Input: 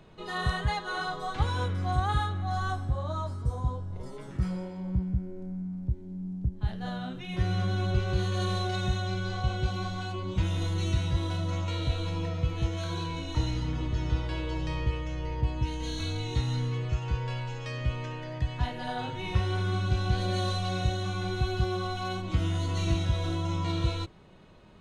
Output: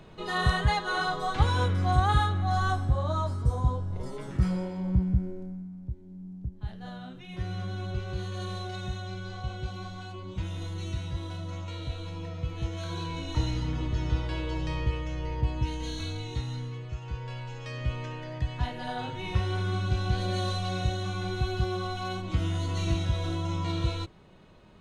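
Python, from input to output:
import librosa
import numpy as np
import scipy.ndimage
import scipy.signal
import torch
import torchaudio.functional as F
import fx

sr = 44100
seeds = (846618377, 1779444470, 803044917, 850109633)

y = fx.gain(x, sr, db=fx.line((5.27, 4.0), (5.7, -6.0), (12.18, -6.0), (13.29, 0.5), (15.7, 0.5), (16.87, -7.5), (17.92, -0.5)))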